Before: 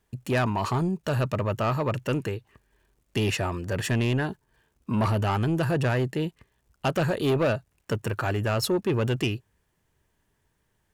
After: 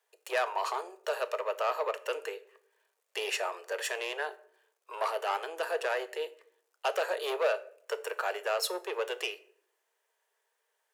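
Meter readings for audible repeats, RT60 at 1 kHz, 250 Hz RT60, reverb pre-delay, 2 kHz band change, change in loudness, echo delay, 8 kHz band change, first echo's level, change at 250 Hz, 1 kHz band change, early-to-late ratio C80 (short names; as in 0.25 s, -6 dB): none, 0.50 s, 1.0 s, 6 ms, -3.0 dB, -6.5 dB, none, -3.0 dB, none, -25.0 dB, -2.5 dB, 21.5 dB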